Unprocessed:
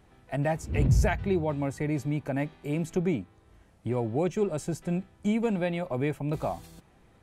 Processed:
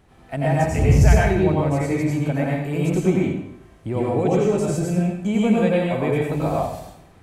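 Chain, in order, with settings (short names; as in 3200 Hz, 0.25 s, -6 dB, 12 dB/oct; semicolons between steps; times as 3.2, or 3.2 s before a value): plate-style reverb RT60 0.77 s, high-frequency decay 0.85×, pre-delay 75 ms, DRR -4.5 dB; gain +3 dB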